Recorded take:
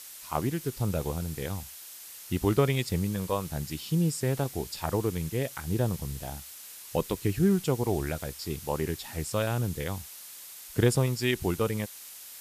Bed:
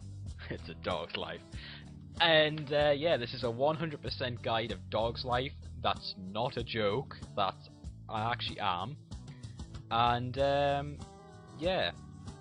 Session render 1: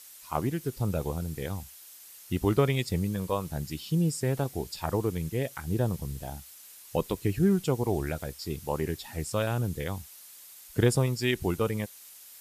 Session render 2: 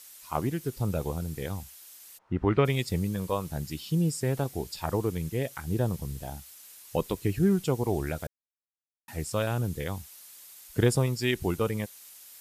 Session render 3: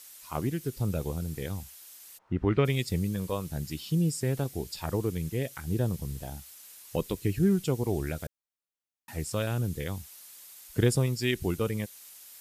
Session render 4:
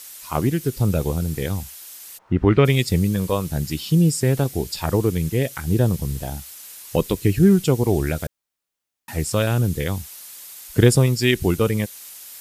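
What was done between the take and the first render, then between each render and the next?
broadband denoise 6 dB, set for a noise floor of −46 dBFS
0:02.17–0:02.64: low-pass with resonance 770 Hz → 2,800 Hz, resonance Q 2.1; 0:08.27–0:09.08: silence
dynamic equaliser 890 Hz, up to −6 dB, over −44 dBFS, Q 1
level +10 dB; brickwall limiter −2 dBFS, peak gain reduction 1.5 dB

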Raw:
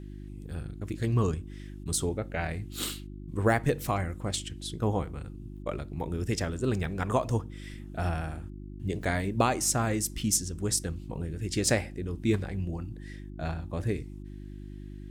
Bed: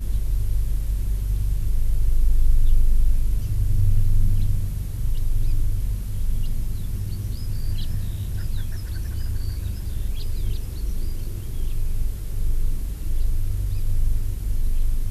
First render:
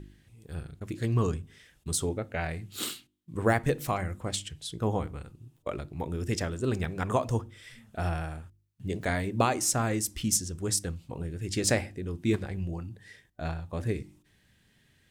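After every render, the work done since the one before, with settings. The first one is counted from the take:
hum removal 50 Hz, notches 7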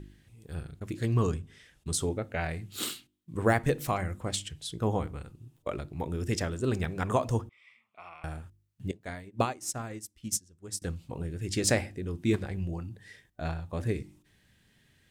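0:01.39–0:02.00: Bessel low-pass filter 11,000 Hz
0:07.49–0:08.24: pair of resonant band-passes 1,600 Hz, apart 1 octave
0:08.91–0:10.82: expander for the loud parts 2.5 to 1, over −37 dBFS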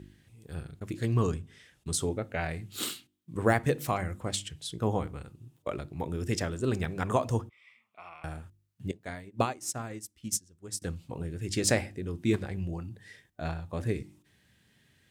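high-pass filter 68 Hz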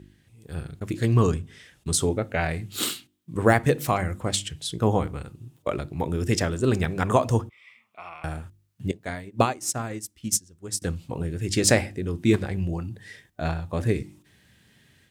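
automatic gain control gain up to 7 dB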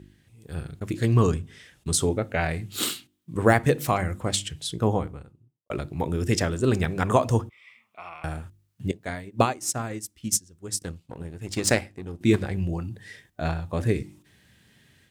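0:04.64–0:05.70: fade out and dull
0:10.82–0:12.21: power curve on the samples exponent 1.4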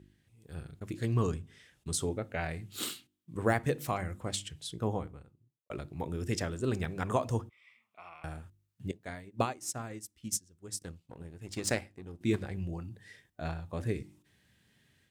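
level −9.5 dB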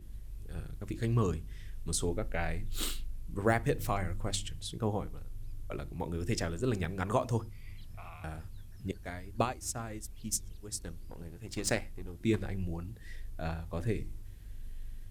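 mix in bed −21.5 dB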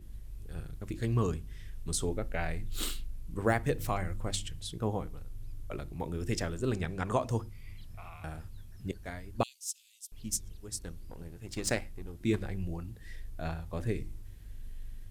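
0:06.74–0:07.29: low-pass filter 11,000 Hz
0:09.43–0:10.12: Butterworth high-pass 2,900 Hz 48 dB per octave

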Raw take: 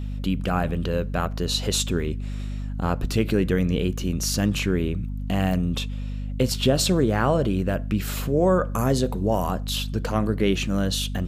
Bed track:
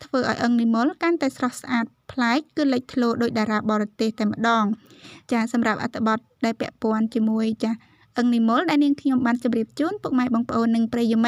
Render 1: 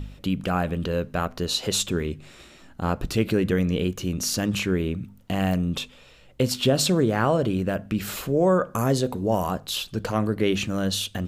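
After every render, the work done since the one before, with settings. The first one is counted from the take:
hum removal 50 Hz, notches 5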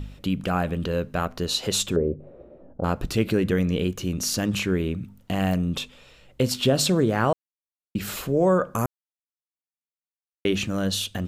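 0:01.96–0:02.84: low-pass with resonance 540 Hz, resonance Q 4.6
0:07.33–0:07.95: silence
0:08.86–0:10.45: silence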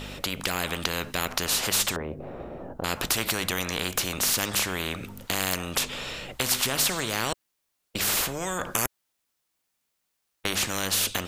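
automatic gain control gain up to 3.5 dB
every bin compressed towards the loudest bin 4 to 1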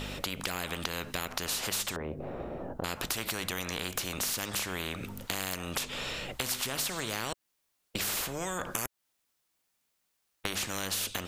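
downward compressor 3 to 1, threshold −32 dBFS, peak gain reduction 9.5 dB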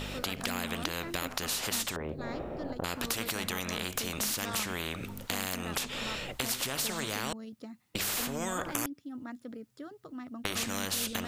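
mix in bed track −21.5 dB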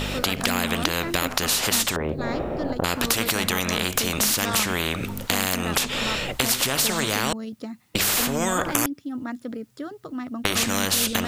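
level +10.5 dB

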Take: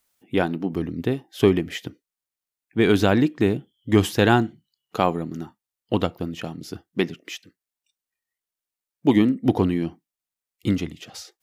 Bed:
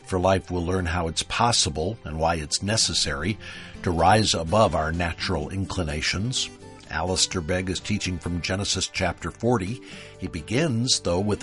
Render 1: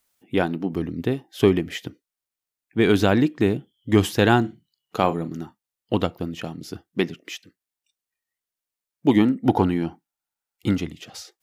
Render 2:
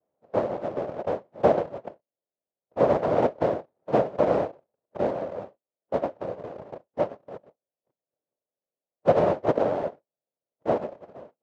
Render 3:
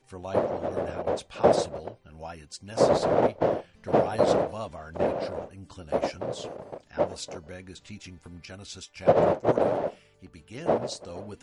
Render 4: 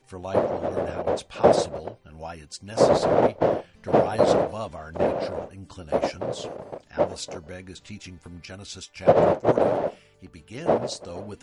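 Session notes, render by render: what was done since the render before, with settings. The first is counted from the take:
0:04.40–0:05.33: double-tracking delay 42 ms −13 dB; 0:09.18–0:10.78: hollow resonant body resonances 850/1,400 Hz, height 11 dB, ringing for 20 ms
cochlear-implant simulation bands 1; low-pass with resonance 580 Hz, resonance Q 3.8
mix in bed −17 dB
level +3 dB

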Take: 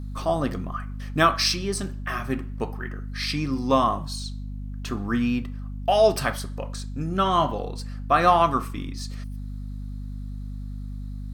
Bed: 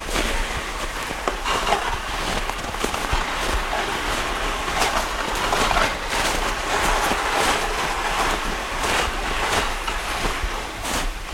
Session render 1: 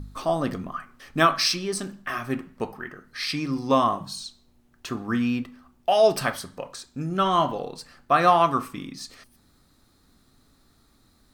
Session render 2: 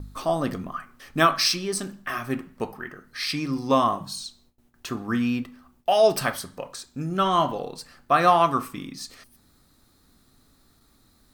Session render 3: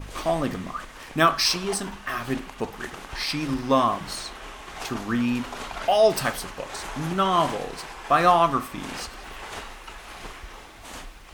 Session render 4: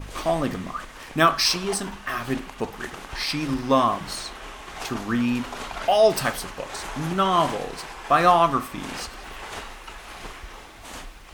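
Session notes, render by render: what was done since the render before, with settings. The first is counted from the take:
hum removal 50 Hz, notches 5
noise gate with hold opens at −51 dBFS; high-shelf EQ 11,000 Hz +7.5 dB
mix in bed −15.5 dB
level +1 dB

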